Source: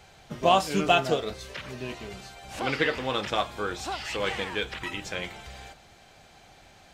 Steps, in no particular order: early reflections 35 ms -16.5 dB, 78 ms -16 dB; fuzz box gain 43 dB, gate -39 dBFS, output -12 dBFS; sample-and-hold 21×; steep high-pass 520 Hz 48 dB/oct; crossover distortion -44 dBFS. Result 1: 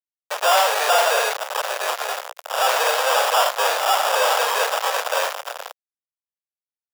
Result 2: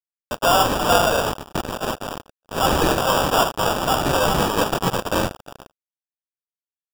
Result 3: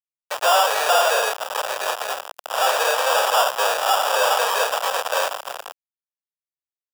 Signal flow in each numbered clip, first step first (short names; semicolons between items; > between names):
sample-and-hold > early reflections > fuzz box > crossover distortion > steep high-pass; early reflections > crossover distortion > fuzz box > steep high-pass > sample-and-hold; early reflections > sample-and-hold > fuzz box > steep high-pass > crossover distortion